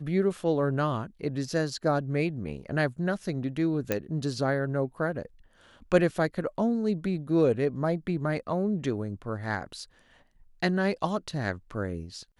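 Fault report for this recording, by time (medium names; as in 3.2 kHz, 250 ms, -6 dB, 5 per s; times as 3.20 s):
3.92 s: pop -12 dBFS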